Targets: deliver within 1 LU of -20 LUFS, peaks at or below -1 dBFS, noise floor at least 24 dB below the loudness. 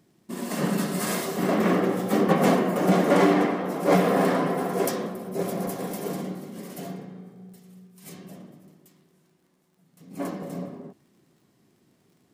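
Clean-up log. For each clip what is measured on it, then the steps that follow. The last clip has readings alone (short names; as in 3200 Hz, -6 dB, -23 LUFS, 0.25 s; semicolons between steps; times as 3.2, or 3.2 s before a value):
ticks 21/s; loudness -24.5 LUFS; peak -8.5 dBFS; loudness target -20.0 LUFS
-> de-click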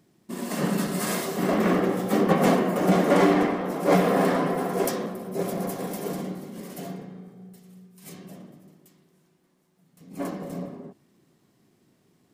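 ticks 0/s; loudness -24.5 LUFS; peak -8.5 dBFS; loudness target -20.0 LUFS
-> gain +4.5 dB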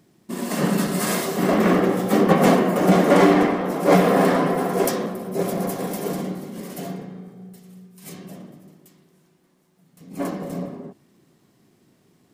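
loudness -20.0 LUFS; peak -4.0 dBFS; noise floor -61 dBFS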